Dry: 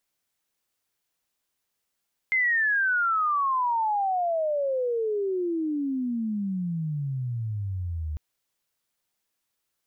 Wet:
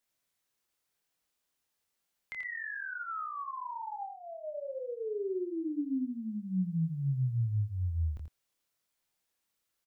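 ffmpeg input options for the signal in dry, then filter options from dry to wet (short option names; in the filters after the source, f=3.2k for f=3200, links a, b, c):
-f lavfi -i "aevalsrc='pow(10,(-20-8*t/5.85)/20)*sin(2*PI*2100*5.85/log(74/2100)*(exp(log(74/2100)*t/5.85)-1))':d=5.85:s=44100"
-filter_complex "[0:a]acrossover=split=270[a][b];[b]acompressor=threshold=-44dB:ratio=2.5[c];[a][c]amix=inputs=2:normalize=0,flanger=delay=22.5:depth=5.2:speed=1,asplit=2[d][e];[e]aecho=0:1:85:0.447[f];[d][f]amix=inputs=2:normalize=0"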